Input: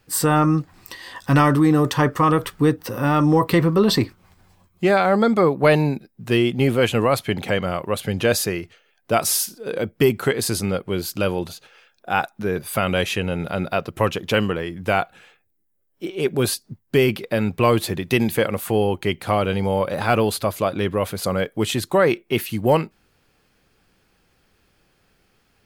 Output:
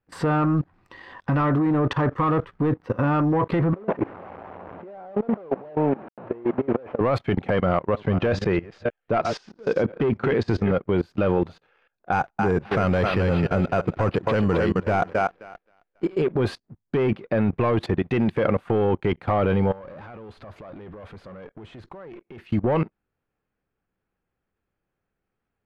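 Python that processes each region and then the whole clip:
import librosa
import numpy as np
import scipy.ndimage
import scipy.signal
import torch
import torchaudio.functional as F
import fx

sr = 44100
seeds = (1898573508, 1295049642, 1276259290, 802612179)

y = fx.chain(x, sr, fx.delta_mod(bps=16000, step_db=-26.5),
    fx.bandpass_q(hz=620.0, q=1.4),
    fx.over_compress(threshold_db=-29.0, ratio=-1.0), at=(3.73, 7.01))
y = fx.chain(y, sr, fx.reverse_delay(ms=318, wet_db=-11.5),
    fx.lowpass(hz=6600.0, slope=24), at=(7.63, 10.73))
y = fx.chain(y, sr, fx.low_shelf(hz=120.0, db=6.5),
    fx.echo_thinned(ms=264, feedback_pct=32, hz=250.0, wet_db=-6.5),
    fx.resample_bad(factor=6, down='none', up='hold'), at=(12.12, 16.22))
y = fx.chain(y, sr, fx.over_compress(threshold_db=-25.0, ratio=-1.0),
    fx.tube_stage(drive_db=26.0, bias=0.35), at=(19.71, 22.4))
y = fx.leveller(y, sr, passes=2)
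y = fx.level_steps(y, sr, step_db=20)
y = scipy.signal.sosfilt(scipy.signal.butter(2, 1800.0, 'lowpass', fs=sr, output='sos'), y)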